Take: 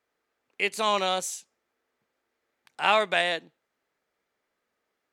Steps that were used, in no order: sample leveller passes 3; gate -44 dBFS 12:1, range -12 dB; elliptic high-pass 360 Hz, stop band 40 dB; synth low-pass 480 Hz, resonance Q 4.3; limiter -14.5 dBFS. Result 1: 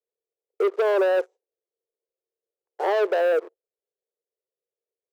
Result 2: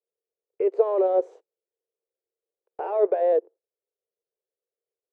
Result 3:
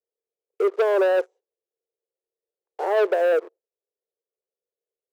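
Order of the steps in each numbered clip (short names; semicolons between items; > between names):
synth low-pass > gate > sample leveller > elliptic high-pass > limiter; sample leveller > elliptic high-pass > limiter > synth low-pass > gate; limiter > synth low-pass > sample leveller > gate > elliptic high-pass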